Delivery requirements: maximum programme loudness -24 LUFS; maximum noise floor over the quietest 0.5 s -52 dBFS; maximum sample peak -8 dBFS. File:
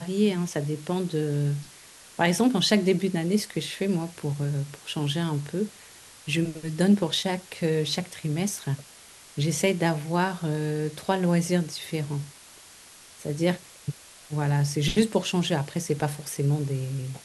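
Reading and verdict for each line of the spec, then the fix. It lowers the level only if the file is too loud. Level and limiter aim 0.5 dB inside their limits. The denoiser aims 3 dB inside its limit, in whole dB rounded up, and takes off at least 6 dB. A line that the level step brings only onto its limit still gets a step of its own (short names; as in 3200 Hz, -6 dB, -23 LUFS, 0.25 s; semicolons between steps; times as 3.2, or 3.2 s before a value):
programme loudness -26.5 LUFS: OK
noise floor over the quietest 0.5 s -50 dBFS: fail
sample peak -6.5 dBFS: fail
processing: denoiser 6 dB, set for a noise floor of -50 dBFS; limiter -8.5 dBFS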